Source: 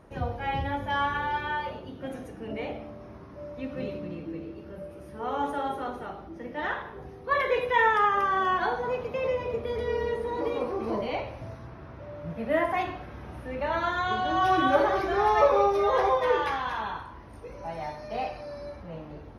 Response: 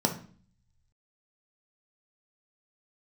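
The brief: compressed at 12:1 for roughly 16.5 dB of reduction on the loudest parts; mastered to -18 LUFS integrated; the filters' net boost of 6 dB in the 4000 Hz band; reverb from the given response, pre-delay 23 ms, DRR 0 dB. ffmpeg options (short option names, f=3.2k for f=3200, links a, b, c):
-filter_complex "[0:a]equalizer=f=4k:t=o:g=8,acompressor=threshold=-32dB:ratio=12,asplit=2[a][b];[1:a]atrim=start_sample=2205,adelay=23[c];[b][c]afir=irnorm=-1:irlink=0,volume=-10dB[d];[a][d]amix=inputs=2:normalize=0,volume=13.5dB"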